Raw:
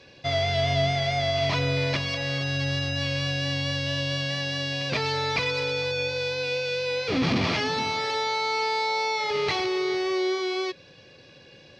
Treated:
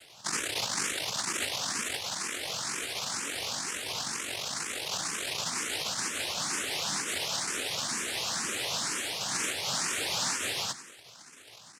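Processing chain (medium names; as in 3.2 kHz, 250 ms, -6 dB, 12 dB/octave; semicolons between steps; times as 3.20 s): cycle switcher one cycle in 3, muted; Chebyshev high-pass 280 Hz, order 8; compression 3:1, threshold -33 dBFS, peak gain reduction 7 dB; noise-vocoded speech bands 1; on a send: feedback delay 94 ms, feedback 56%, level -15 dB; on the sum: barber-pole phaser +2.1 Hz; trim +4.5 dB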